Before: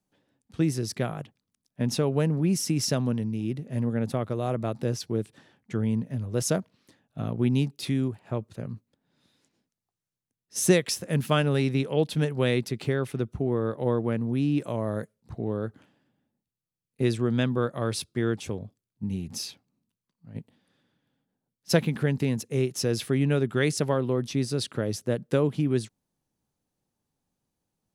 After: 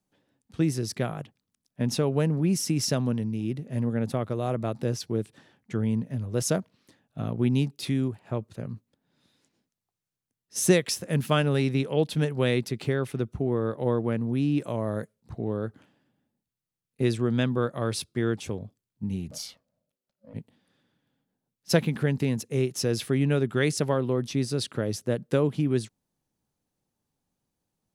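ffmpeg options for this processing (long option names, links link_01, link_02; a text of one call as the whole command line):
ffmpeg -i in.wav -filter_complex "[0:a]asettb=1/sr,asplit=3[link_01][link_02][link_03];[link_01]atrim=end=19.314[link_04];[link_02]atrim=start=19.31:end=20.34,asetpts=PTS-STARTPTS,afade=type=in:duration=0.004:curve=qsin,afade=type=out:start_time=1.026:duration=0.004:curve=qsin,aeval=exprs='val(0)*sin(2*PI*380*n/s)':channel_layout=same[link_05];[link_03]atrim=start=20.336[link_06];[link_04][link_05]acrossfade=duration=0.004:curve1=hsin:curve2=qsin[link_07];[link_07][link_06]acrossfade=duration=0.004:curve1=qsin:curve2=hsin" out.wav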